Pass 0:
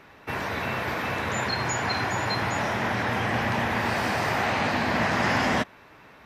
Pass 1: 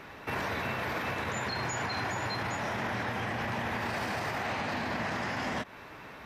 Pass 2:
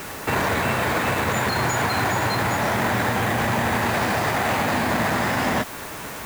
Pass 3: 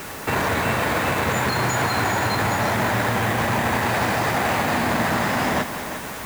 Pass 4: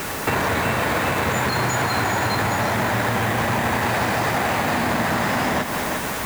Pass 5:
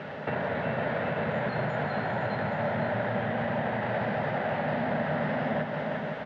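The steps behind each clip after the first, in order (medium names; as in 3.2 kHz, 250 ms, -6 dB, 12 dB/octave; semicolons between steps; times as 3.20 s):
compression, threshold -27 dBFS, peak gain reduction 7.5 dB; peak limiter -29 dBFS, peak gain reduction 10 dB; trim +4 dB
added noise white -48 dBFS; in parallel at -6 dB: sample-rate reducer 5.5 kHz, jitter 0%; on the sum: trim +8.5 dB
multi-head delay 176 ms, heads first and second, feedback 49%, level -13.5 dB
compression, threshold -24 dBFS, peak gain reduction 6.5 dB; trim +6 dB
cabinet simulation 130–2900 Hz, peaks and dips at 150 Hz +8 dB, 220 Hz +4 dB, 320 Hz -8 dB, 590 Hz +8 dB, 1.1 kHz -9 dB, 2.4 kHz -7 dB; delay 509 ms -8 dB; trim -9 dB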